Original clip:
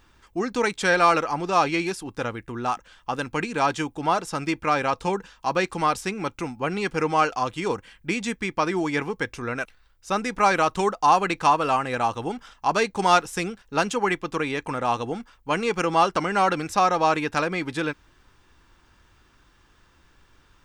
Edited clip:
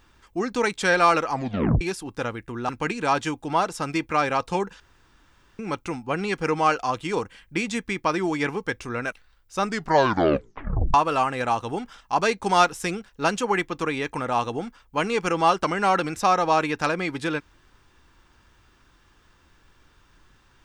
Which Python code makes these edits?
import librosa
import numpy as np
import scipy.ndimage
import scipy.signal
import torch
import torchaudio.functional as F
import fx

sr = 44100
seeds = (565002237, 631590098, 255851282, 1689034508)

y = fx.edit(x, sr, fx.tape_stop(start_s=1.32, length_s=0.49),
    fx.cut(start_s=2.69, length_s=0.53),
    fx.room_tone_fill(start_s=5.33, length_s=0.79),
    fx.tape_stop(start_s=10.14, length_s=1.33), tone=tone)